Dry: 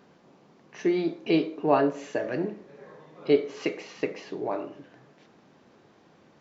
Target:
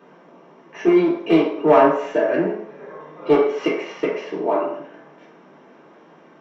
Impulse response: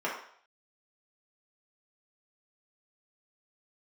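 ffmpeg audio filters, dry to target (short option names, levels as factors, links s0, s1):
-filter_complex "[0:a]acontrast=65,aeval=exprs='clip(val(0),-1,0.158)':c=same[s0];[1:a]atrim=start_sample=2205[s1];[s0][s1]afir=irnorm=-1:irlink=0,volume=0.562"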